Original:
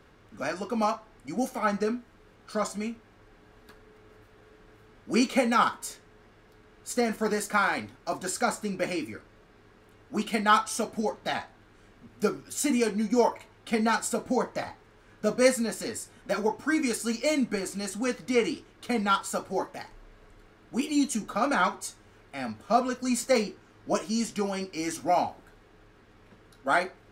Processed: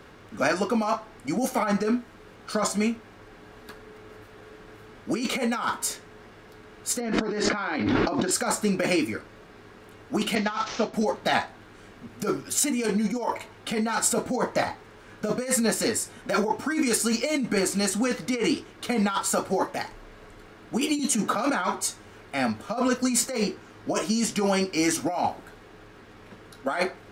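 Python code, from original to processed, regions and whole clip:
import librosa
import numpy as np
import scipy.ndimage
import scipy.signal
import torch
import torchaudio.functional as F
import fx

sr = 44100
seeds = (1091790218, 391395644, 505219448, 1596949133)

y = fx.chain(x, sr, fx.lowpass(hz=4900.0, slope=24),
    fx.peak_eq(hz=300.0, db=9.0, octaves=0.74),
    fx.env_flatten(amount_pct=70), at=(7.0, 8.31))
y = fx.chain(y, sr, fx.cvsd(bps=32000),
    fx.band_widen(depth_pct=70), at=(10.35, 10.94))
y = fx.chain(y, sr, fx.highpass(hz=100.0, slope=12),
    fx.band_squash(depth_pct=70), at=(20.99, 21.5))
y = fx.low_shelf(y, sr, hz=77.0, db=-7.5)
y = fx.over_compress(y, sr, threshold_db=-30.0, ratio=-1.0)
y = y * 10.0 ** (5.5 / 20.0)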